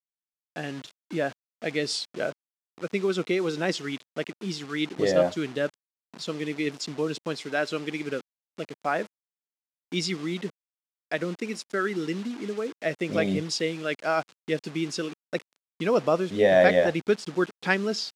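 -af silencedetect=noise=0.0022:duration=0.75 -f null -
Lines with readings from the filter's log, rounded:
silence_start: 9.07
silence_end: 9.92 | silence_duration: 0.85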